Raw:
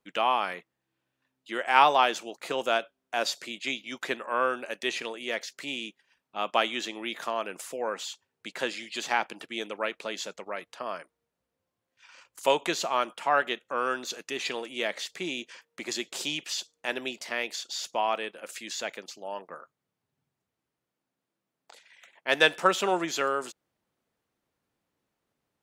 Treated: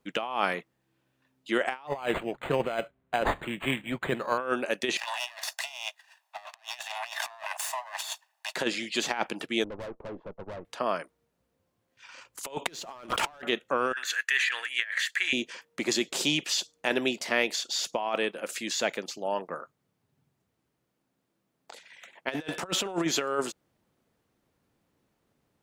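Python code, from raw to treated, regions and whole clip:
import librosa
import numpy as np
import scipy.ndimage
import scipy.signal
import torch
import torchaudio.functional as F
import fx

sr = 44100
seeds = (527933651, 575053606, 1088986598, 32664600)

y = fx.chain(x, sr, fx.low_shelf_res(hz=180.0, db=8.0, q=1.5),
    fx.resample_linear(factor=8), at=(1.87, 4.38))
y = fx.chain(y, sr, fx.lower_of_two(delay_ms=1.1),
    fx.steep_highpass(hz=600.0, slope=96),
    fx.over_compress(threshold_db=-42.0, ratio=-0.5), at=(4.97, 8.56))
y = fx.chain(y, sr, fx.cheby1_bandpass(low_hz=130.0, high_hz=1000.0, order=3),
    fx.tube_stage(drive_db=43.0, bias=0.75), at=(9.64, 10.65))
y = fx.chain(y, sr, fx.leveller(passes=3),
    fx.sustainer(db_per_s=45.0), at=(12.66, 13.42))
y = fx.chain(y, sr, fx.highpass_res(hz=1700.0, q=7.4),
    fx.peak_eq(hz=5200.0, db=-8.5, octaves=0.37),
    fx.notch(hz=3700.0, q=20.0), at=(13.93, 15.33))
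y = fx.low_shelf(y, sr, hz=460.0, db=6.5)
y = fx.over_compress(y, sr, threshold_db=-28.0, ratio=-0.5)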